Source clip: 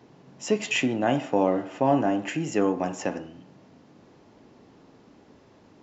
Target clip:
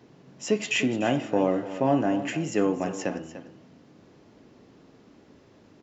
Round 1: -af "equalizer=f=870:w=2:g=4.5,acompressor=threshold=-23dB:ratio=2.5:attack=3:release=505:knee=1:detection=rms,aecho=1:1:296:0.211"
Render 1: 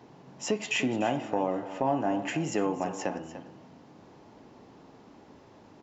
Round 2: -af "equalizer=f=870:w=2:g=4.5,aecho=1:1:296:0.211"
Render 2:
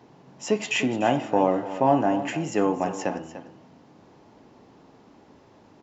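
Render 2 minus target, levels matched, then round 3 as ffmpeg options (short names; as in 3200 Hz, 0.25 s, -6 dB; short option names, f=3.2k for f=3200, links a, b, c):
1000 Hz band +5.0 dB
-af "equalizer=f=870:w=2:g=-4.5,aecho=1:1:296:0.211"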